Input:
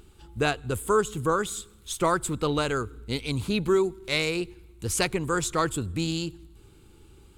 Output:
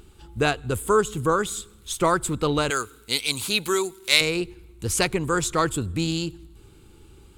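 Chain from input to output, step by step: 2.70–4.21 s: tilt EQ +4 dB/octave; trim +3 dB

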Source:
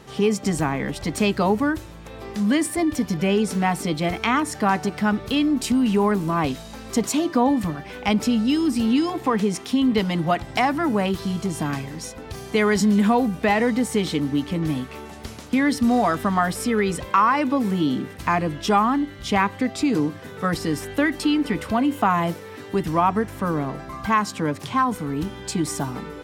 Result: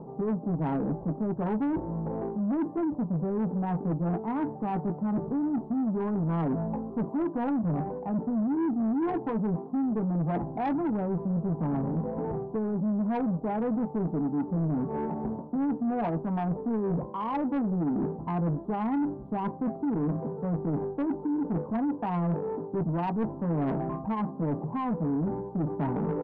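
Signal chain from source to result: in parallel at +1.5 dB: peak limiter -14 dBFS, peak gain reduction 7.5 dB; on the sum: resonant low shelf 120 Hz -8.5 dB, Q 3; reverse; compression 16:1, threshold -21 dBFS, peak gain reduction 15.5 dB; reverse; elliptic low-pass 940 Hz, stop band 60 dB; vibrato 2.8 Hz 11 cents; doubling 18 ms -9 dB; saturation -24 dBFS, distortion -13 dB

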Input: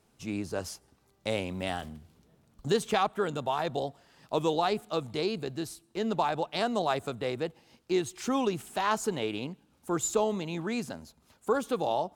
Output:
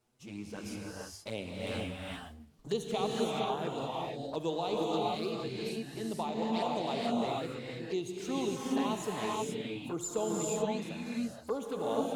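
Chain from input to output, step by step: hum notches 50/100/150 Hz; touch-sensitive flanger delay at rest 8.4 ms, full sweep at -25.5 dBFS; gated-style reverb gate 500 ms rising, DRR -3.5 dB; trim -6 dB

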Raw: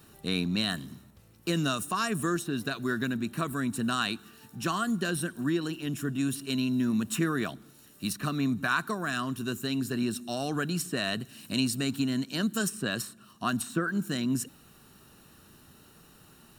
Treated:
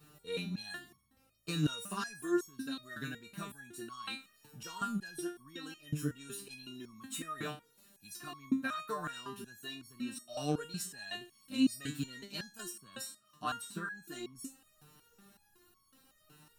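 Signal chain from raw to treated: 2.55–3.86 s: peaking EQ 1 kHz -4.5 dB 1.2 oct; resonator arpeggio 5.4 Hz 150–1100 Hz; trim +6 dB

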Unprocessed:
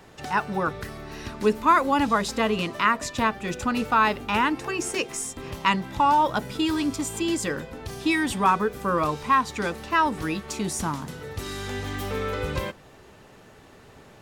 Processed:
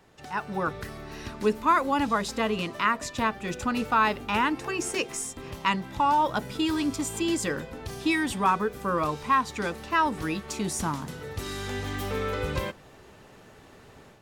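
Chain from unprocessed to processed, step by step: level rider gain up to 8 dB; trim -9 dB

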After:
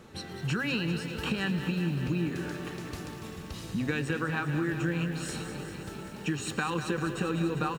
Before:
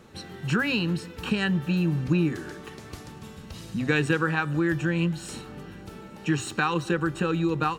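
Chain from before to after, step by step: compression, threshold -27 dBFS, peak gain reduction 9 dB; on a send: frequency-shifting echo 115 ms, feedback 54%, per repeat +96 Hz, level -18.5 dB; on the sum: bit-crushed delay 197 ms, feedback 80%, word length 9-bit, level -10 dB

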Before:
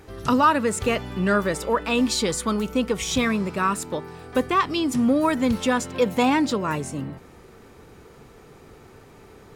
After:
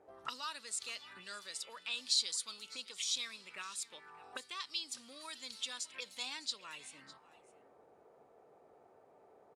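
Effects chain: peaking EQ 9.3 kHz +13.5 dB 0.99 oct; auto-wah 580–4300 Hz, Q 3.3, up, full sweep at -19.5 dBFS; delay 606 ms -19 dB; trim -5.5 dB

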